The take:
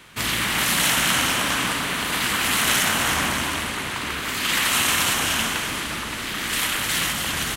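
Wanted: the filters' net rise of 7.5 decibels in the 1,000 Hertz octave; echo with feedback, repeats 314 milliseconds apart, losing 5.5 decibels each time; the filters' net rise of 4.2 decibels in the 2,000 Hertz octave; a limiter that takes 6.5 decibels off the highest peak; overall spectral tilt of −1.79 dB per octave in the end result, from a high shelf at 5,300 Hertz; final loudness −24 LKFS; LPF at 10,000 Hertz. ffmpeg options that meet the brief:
ffmpeg -i in.wav -af "lowpass=10000,equalizer=frequency=1000:width_type=o:gain=8.5,equalizer=frequency=2000:width_type=o:gain=3.5,highshelf=frequency=5300:gain=-6.5,alimiter=limit=-9.5dB:level=0:latency=1,aecho=1:1:314|628|942|1256|1570|1884|2198:0.531|0.281|0.149|0.079|0.0419|0.0222|0.0118,volume=-5.5dB" out.wav

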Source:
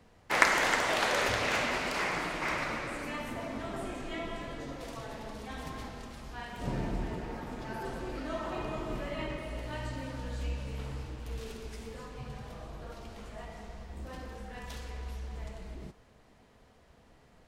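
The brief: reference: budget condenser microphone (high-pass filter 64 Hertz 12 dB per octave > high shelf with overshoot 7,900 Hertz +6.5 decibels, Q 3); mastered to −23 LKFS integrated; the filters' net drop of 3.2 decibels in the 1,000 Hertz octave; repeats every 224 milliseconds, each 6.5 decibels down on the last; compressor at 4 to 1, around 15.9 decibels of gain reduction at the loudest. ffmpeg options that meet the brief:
ffmpeg -i in.wav -af "equalizer=frequency=1000:width_type=o:gain=-4,acompressor=threshold=-40dB:ratio=4,highpass=64,highshelf=frequency=7900:width_type=q:width=3:gain=6.5,aecho=1:1:224|448|672|896|1120|1344:0.473|0.222|0.105|0.0491|0.0231|0.0109,volume=20dB" out.wav

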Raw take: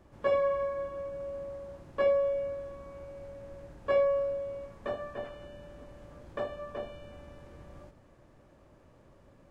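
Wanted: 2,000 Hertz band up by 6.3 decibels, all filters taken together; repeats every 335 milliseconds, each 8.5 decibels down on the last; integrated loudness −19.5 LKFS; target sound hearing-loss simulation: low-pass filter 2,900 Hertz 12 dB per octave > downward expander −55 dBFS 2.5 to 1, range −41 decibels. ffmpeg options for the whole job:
ffmpeg -i in.wav -af "lowpass=2900,equalizer=frequency=2000:width_type=o:gain=8.5,aecho=1:1:335|670|1005|1340:0.376|0.143|0.0543|0.0206,agate=range=-41dB:threshold=-55dB:ratio=2.5,volume=11.5dB" out.wav

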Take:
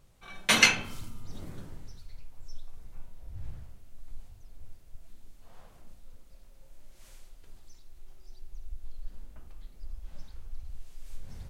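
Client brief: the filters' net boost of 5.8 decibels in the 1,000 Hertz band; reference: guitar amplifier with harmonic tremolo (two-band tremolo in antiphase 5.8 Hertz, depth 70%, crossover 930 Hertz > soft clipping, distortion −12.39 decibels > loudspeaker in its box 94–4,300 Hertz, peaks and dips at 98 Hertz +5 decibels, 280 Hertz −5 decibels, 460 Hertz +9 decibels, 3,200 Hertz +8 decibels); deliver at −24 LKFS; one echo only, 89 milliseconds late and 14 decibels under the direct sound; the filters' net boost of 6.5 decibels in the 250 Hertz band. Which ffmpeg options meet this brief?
ffmpeg -i in.wav -filter_complex "[0:a]equalizer=frequency=250:width_type=o:gain=9,equalizer=frequency=1000:width_type=o:gain=6.5,aecho=1:1:89:0.2,acrossover=split=930[link_01][link_02];[link_01]aeval=exprs='val(0)*(1-0.7/2+0.7/2*cos(2*PI*5.8*n/s))':channel_layout=same[link_03];[link_02]aeval=exprs='val(0)*(1-0.7/2-0.7/2*cos(2*PI*5.8*n/s))':channel_layout=same[link_04];[link_03][link_04]amix=inputs=2:normalize=0,asoftclip=threshold=-16.5dB,highpass=94,equalizer=frequency=98:width_type=q:width=4:gain=5,equalizer=frequency=280:width_type=q:width=4:gain=-5,equalizer=frequency=460:width_type=q:width=4:gain=9,equalizer=frequency=3200:width_type=q:width=4:gain=8,lowpass=frequency=4300:width=0.5412,lowpass=frequency=4300:width=1.3066,volume=6dB" out.wav

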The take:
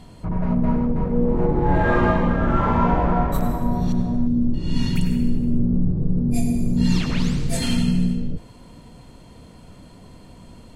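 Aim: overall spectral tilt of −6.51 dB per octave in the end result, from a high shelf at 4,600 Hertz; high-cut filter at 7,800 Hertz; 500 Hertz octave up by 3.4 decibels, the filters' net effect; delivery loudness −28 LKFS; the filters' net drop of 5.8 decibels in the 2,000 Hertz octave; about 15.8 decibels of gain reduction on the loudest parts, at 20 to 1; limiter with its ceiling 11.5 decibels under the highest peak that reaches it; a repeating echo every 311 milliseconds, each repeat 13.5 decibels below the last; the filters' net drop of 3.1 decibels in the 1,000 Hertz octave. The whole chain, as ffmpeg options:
ffmpeg -i in.wav -af "lowpass=7800,equalizer=frequency=500:width_type=o:gain=5.5,equalizer=frequency=1000:width_type=o:gain=-4.5,equalizer=frequency=2000:width_type=o:gain=-7.5,highshelf=frequency=4600:gain=6.5,acompressor=threshold=-29dB:ratio=20,alimiter=level_in=9.5dB:limit=-24dB:level=0:latency=1,volume=-9.5dB,aecho=1:1:311|622:0.211|0.0444,volume=14.5dB" out.wav

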